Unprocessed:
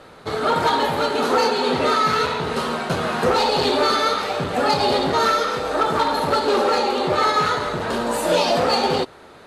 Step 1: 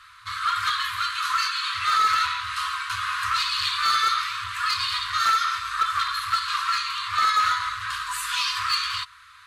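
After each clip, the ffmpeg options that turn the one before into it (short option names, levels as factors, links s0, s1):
-af "afftfilt=real='re*(1-between(b*sr/4096,110,990))':imag='im*(1-between(b*sr/4096,110,990))':win_size=4096:overlap=0.75,bass=f=250:g=-10,treble=f=4000:g=-1,asoftclip=type=hard:threshold=0.168"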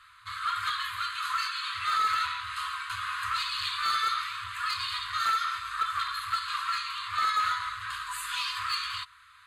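-af "equalizer=f=5600:w=6.7:g=-15,volume=0.501"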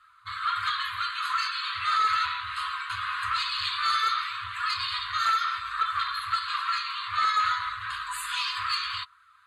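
-af "afftdn=nr=12:nf=-48,volume=1.33"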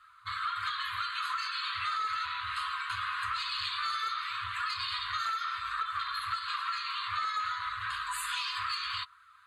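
-af "acompressor=threshold=0.0282:ratio=6"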